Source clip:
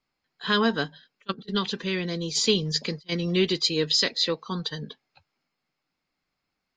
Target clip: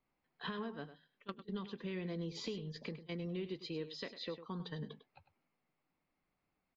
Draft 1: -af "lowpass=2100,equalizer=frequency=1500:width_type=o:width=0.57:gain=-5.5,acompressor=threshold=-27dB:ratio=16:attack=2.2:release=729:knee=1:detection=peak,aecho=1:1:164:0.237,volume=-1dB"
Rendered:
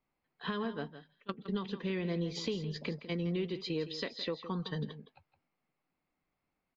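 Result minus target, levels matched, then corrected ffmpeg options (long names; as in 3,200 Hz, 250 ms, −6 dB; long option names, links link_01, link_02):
echo 63 ms late; downward compressor: peak gain reduction −6.5 dB
-af "lowpass=2100,equalizer=frequency=1500:width_type=o:width=0.57:gain=-5.5,acompressor=threshold=-34dB:ratio=16:attack=2.2:release=729:knee=1:detection=peak,aecho=1:1:101:0.237,volume=-1dB"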